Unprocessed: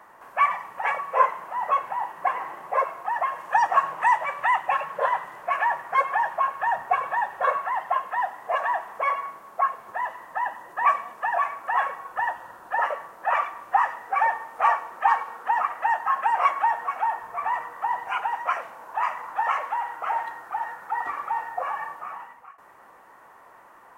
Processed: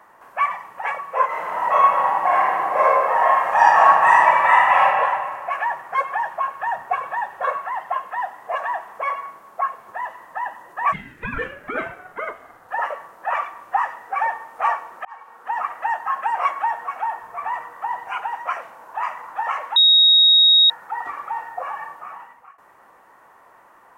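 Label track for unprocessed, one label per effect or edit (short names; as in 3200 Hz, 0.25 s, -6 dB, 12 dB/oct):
1.260000	4.840000	reverb throw, RT60 1.9 s, DRR -9.5 dB
10.920000	12.670000	ring modulator 1000 Hz -> 210 Hz
15.050000	15.660000	fade in
19.760000	20.700000	bleep 3770 Hz -9.5 dBFS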